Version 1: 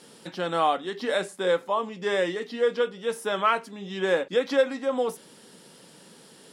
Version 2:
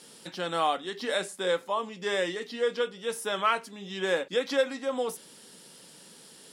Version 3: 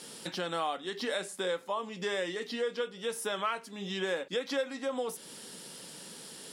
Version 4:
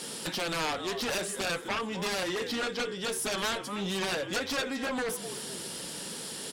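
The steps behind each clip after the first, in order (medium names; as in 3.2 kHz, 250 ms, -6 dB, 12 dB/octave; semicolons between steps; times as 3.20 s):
treble shelf 2.5 kHz +8 dB; trim -4.5 dB
compression 2.5:1, threshold -39 dBFS, peak gain reduction 12.5 dB; trim +4.5 dB
frequency-shifting echo 255 ms, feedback 43%, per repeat -52 Hz, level -16 dB; Chebyshev shaper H 3 -12 dB, 7 -8 dB, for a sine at -19 dBFS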